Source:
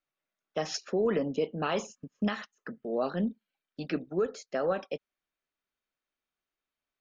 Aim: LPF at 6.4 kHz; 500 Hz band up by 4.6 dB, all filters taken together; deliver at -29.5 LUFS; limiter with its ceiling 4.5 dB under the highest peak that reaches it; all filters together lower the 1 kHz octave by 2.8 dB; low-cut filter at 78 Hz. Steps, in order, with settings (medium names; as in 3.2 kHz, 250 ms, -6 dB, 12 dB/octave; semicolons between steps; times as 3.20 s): high-pass 78 Hz; low-pass 6.4 kHz; peaking EQ 500 Hz +7 dB; peaking EQ 1 kHz -7.5 dB; trim +1.5 dB; peak limiter -17.5 dBFS